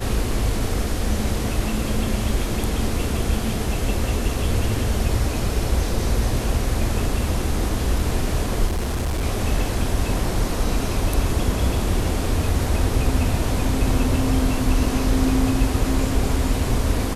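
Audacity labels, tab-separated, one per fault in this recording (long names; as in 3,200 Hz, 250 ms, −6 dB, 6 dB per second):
8.670000	9.240000	clipping −19.5 dBFS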